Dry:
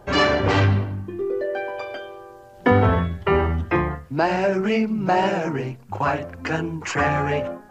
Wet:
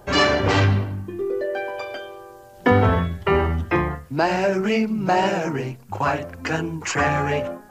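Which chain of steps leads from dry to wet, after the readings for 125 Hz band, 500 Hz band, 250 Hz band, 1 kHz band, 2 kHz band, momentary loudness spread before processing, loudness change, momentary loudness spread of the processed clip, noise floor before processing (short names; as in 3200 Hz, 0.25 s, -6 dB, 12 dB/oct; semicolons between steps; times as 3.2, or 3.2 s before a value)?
0.0 dB, 0.0 dB, 0.0 dB, 0.0 dB, +1.0 dB, 11 LU, +0.5 dB, 12 LU, -46 dBFS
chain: high shelf 5500 Hz +9 dB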